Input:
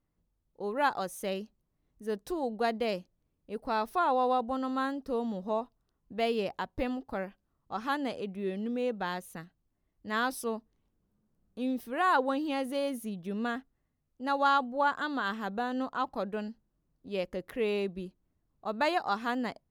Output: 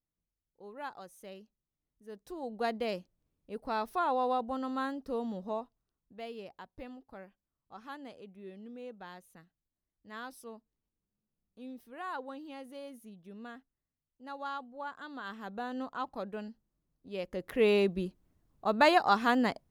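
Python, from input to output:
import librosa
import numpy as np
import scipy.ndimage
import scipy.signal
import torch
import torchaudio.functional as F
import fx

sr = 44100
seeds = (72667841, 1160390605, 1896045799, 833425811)

y = fx.gain(x, sr, db=fx.line((2.07, -14.0), (2.65, -3.0), (5.41, -3.0), (6.23, -13.5), (14.92, -13.5), (15.67, -5.0), (17.18, -5.0), (17.64, 5.0)))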